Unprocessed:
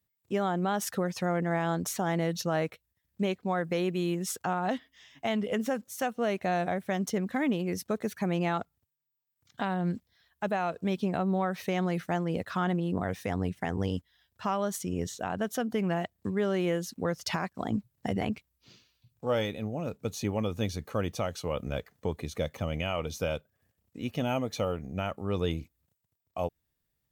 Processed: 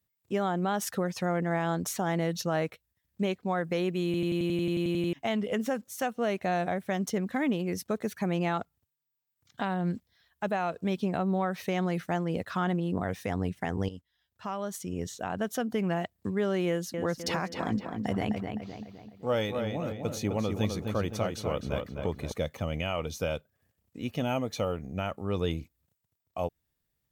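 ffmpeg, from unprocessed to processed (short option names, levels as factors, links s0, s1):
-filter_complex "[0:a]asettb=1/sr,asplit=3[s0][s1][s2];[s0]atrim=end=16.684[s3];[s1]atrim=start=16.68:end=22.32,asetpts=PTS-STARTPTS,afade=t=in:d=0.004:c=qsin,afade=t=out:st=5.636:d=0.004:c=qsin,asplit=2[s4][s5];[s5]adelay=257,lowpass=f=3300:p=1,volume=0.562,asplit=2[s6][s7];[s7]adelay=257,lowpass=f=3300:p=1,volume=0.47,asplit=2[s8][s9];[s9]adelay=257,lowpass=f=3300:p=1,volume=0.47,asplit=2[s10][s11];[s11]adelay=257,lowpass=f=3300:p=1,volume=0.47,asplit=2[s12][s13];[s13]adelay=257,lowpass=f=3300:p=1,volume=0.47,asplit=2[s14][s15];[s15]adelay=257,lowpass=f=3300:p=1,volume=0.47[s16];[s4][s6][s8][s10][s12][s14][s16]amix=inputs=7:normalize=0,atrim=end_sample=248724[s17];[s2]atrim=start=22.316[s18];[s3][s17]acrossfade=d=0.004:c1=hsin:c2=qsin[s19];[s19][s18]acrossfade=d=0.004:c1=qsin:c2=hsin,asplit=14[s20][s21][s22][s23][s24][s25][s26][s27][s28][s29][s30][s31][s32][s33];[s20]atrim=end=4.142[s34];[s21]atrim=start=4.048:end=4.142[s35];[s22]atrim=start=4.048:end=4.142[s36];[s23]atrim=start=4.048:end=4.142[s37];[s24]atrim=start=4.048:end=4.142[s38];[s25]atrim=start=4.048:end=4.142[s39];[s26]atrim=start=4.048:end=4.142[s40];[s27]atrim=start=4.048:end=4.142[s41];[s28]atrim=start=4.048:end=4.142[s42];[s29]atrim=start=4.048:end=4.142[s43];[s30]atrim=start=4.048:end=4.142[s44];[s31]atrim=start=4.048:end=4.142[s45];[s32]atrim=start=5.128:end=13.89,asetpts=PTS-STARTPTS,afade=t=out:st=8.758:d=0.004:c=hsin:silence=0.237137[s46];[s33]atrim=start=13.89,asetpts=PTS-STARTPTS,afade=t=in:d=1.53:silence=0.237137[s47];[s34][s35]acrossfade=d=0.004:c1=hsin:c2=hsin[s48];[s48][s36]acrossfade=d=0.004:c1=hsin:c2=hsin[s49];[s49][s37]acrossfade=d=0.004:c1=hsin:c2=hsin[s50];[s50][s38]acrossfade=d=0.004:c1=hsin:c2=hsin[s51];[s51][s39]acrossfade=d=0.004:c1=hsin:c2=hsin[s52];[s52][s40]acrossfade=d=0.004:c1=hsin:c2=hsin[s53];[s53][s41]acrossfade=d=0.004:c1=hsin:c2=hsin[s54];[s54][s42]acrossfade=d=0.004:c1=hsin:c2=hsin[s55];[s55][s43]acrossfade=d=0.004:c1=hsin:c2=hsin[s56];[s56][s44]acrossfade=d=0.004:c1=hsin:c2=hsin[s57];[s57][s45]acrossfade=d=0.004:c1=hsin:c2=hsin[s58];[s46][s47]concat=n=2:v=0:a=1[s59];[s58][s59]acrossfade=d=0.004:c1=hsin:c2=hsin"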